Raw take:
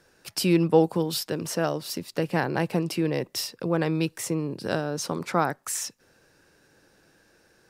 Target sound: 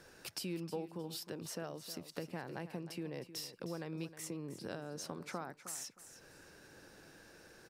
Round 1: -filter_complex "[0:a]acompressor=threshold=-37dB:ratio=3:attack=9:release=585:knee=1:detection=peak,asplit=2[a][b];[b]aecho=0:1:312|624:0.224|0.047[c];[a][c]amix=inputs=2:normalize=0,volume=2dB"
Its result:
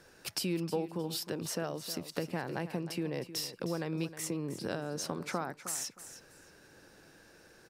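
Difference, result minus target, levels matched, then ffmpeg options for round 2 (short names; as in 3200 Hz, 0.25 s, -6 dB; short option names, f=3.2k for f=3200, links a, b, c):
compressor: peak gain reduction -7.5 dB
-filter_complex "[0:a]acompressor=threshold=-48dB:ratio=3:attack=9:release=585:knee=1:detection=peak,asplit=2[a][b];[b]aecho=0:1:312|624:0.224|0.047[c];[a][c]amix=inputs=2:normalize=0,volume=2dB"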